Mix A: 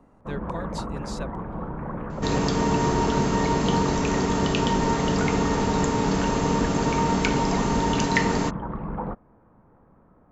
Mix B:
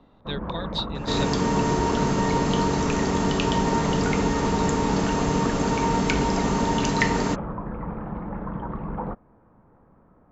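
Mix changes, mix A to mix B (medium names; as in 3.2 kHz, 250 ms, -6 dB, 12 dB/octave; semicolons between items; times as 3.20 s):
speech: add resonant low-pass 3.7 kHz, resonance Q 13; second sound: entry -1.15 s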